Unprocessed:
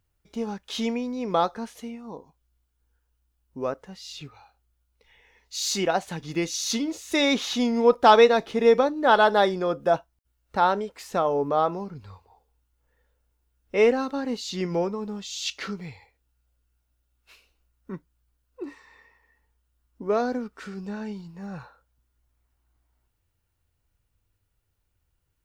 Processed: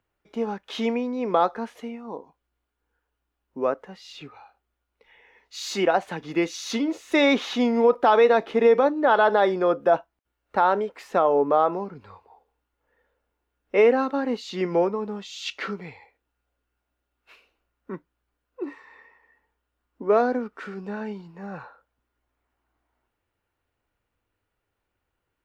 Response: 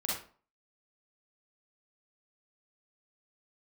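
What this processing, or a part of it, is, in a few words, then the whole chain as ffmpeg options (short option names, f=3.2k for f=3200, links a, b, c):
DJ mixer with the lows and highs turned down: -filter_complex "[0:a]acrossover=split=220 2900:gain=0.178 1 0.2[a][b][c];[a][b][c]amix=inputs=3:normalize=0,alimiter=limit=-14dB:level=0:latency=1:release=69,volume=5dB"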